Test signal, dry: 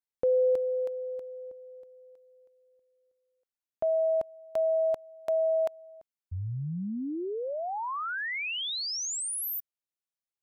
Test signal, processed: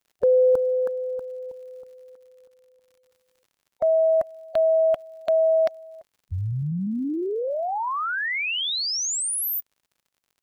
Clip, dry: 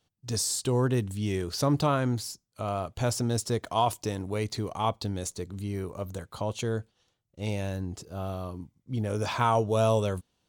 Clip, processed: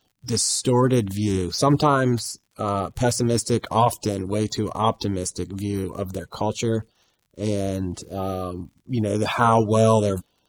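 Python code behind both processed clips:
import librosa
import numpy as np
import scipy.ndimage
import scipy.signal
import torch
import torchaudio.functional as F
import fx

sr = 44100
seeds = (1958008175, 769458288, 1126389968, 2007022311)

y = fx.spec_quant(x, sr, step_db=30)
y = fx.dmg_crackle(y, sr, seeds[0], per_s=83.0, level_db=-57.0)
y = y * librosa.db_to_amplitude(7.5)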